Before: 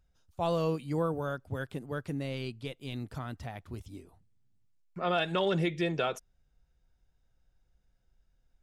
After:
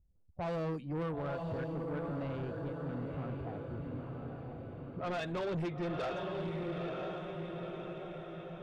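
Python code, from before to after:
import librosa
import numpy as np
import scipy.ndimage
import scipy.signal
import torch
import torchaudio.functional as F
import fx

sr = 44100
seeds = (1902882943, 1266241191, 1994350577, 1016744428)

y = fx.spec_quant(x, sr, step_db=15)
y = fx.env_lowpass(y, sr, base_hz=420.0, full_db=-25.5)
y = fx.high_shelf(y, sr, hz=2100.0, db=-11.0)
y = fx.echo_diffused(y, sr, ms=935, feedback_pct=55, wet_db=-4.5)
y = 10.0 ** (-32.5 / 20.0) * np.tanh(y / 10.0 ** (-32.5 / 20.0))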